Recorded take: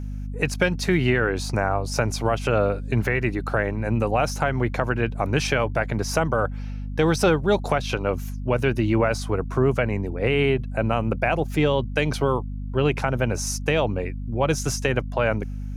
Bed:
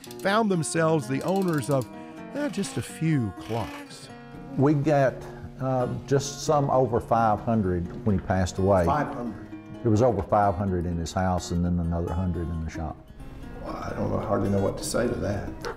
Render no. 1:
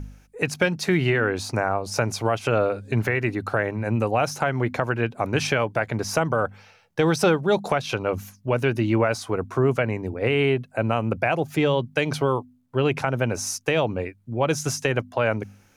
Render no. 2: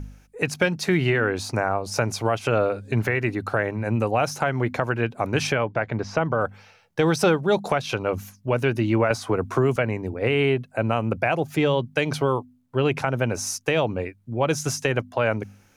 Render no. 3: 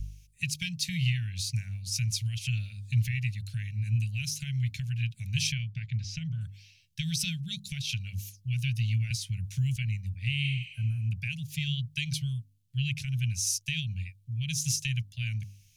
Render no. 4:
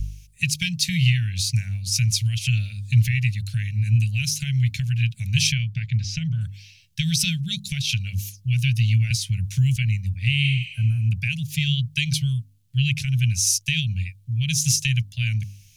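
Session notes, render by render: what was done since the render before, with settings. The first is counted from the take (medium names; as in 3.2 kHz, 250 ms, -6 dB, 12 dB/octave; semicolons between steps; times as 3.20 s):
de-hum 50 Hz, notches 5
5.52–6.41 s: distance through air 180 m; 9.10–9.76 s: three bands compressed up and down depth 70%
inverse Chebyshev band-stop 300–1300 Hz, stop band 50 dB; 10.47–11.02 s: spectral replace 1.7–8.8 kHz both
trim +9 dB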